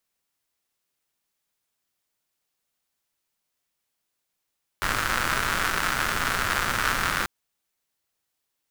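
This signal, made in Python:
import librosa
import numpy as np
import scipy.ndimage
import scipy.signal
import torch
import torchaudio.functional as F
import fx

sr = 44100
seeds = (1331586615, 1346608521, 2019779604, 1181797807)

y = fx.rain(sr, seeds[0], length_s=2.44, drops_per_s=180.0, hz=1400.0, bed_db=-5.0)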